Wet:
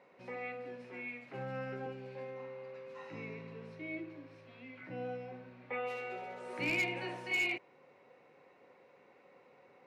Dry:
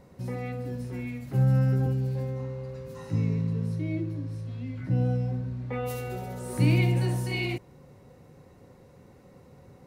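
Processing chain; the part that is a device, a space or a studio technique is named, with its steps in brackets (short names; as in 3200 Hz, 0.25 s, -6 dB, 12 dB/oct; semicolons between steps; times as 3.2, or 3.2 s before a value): megaphone (BPF 490–3000 Hz; bell 2400 Hz +8.5 dB 0.49 oct; hard clip -24.5 dBFS, distortion -19 dB); gain -3 dB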